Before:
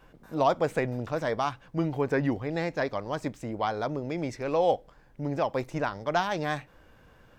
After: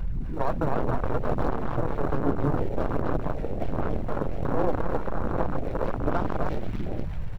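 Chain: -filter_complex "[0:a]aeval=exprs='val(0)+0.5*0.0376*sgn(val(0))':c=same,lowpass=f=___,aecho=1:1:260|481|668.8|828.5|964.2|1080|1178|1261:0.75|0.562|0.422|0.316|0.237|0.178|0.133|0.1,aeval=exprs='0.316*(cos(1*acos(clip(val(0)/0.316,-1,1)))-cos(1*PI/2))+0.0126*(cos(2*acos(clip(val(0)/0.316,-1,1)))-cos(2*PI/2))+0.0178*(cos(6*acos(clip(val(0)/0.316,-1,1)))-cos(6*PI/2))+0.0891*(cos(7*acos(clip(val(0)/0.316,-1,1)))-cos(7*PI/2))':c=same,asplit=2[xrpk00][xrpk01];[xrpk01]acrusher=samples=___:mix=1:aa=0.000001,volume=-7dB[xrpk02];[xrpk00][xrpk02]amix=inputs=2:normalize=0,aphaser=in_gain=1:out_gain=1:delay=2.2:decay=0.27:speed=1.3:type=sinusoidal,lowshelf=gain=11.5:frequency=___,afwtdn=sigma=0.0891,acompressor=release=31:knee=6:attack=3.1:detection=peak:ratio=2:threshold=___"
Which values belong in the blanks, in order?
2100, 27, 62, -26dB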